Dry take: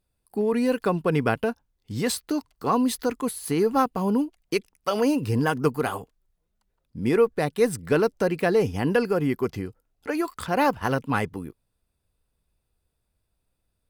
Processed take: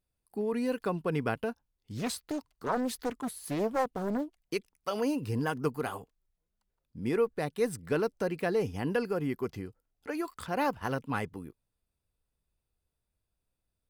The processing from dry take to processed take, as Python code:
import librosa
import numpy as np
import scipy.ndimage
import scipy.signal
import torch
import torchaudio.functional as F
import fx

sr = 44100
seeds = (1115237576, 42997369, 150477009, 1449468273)

y = fx.doppler_dist(x, sr, depth_ms=0.6, at=(1.97, 4.4))
y = y * librosa.db_to_amplitude(-8.0)